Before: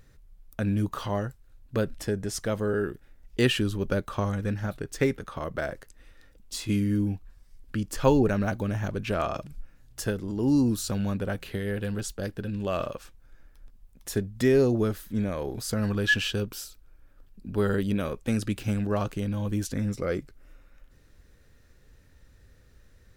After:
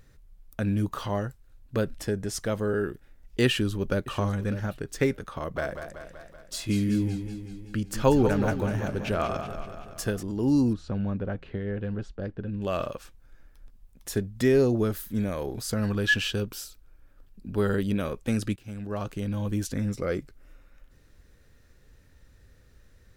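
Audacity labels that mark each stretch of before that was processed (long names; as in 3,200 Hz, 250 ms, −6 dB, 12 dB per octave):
3.460000	4.030000	delay throw 600 ms, feedback 10%, level −13.5 dB
5.370000	10.230000	feedback echo with a swinging delay time 190 ms, feedback 61%, depth 85 cents, level −9 dB
10.730000	12.620000	head-to-tape spacing loss at 10 kHz 34 dB
14.920000	15.460000	high-shelf EQ 9,300 Hz +10 dB
18.560000	19.350000	fade in, from −19.5 dB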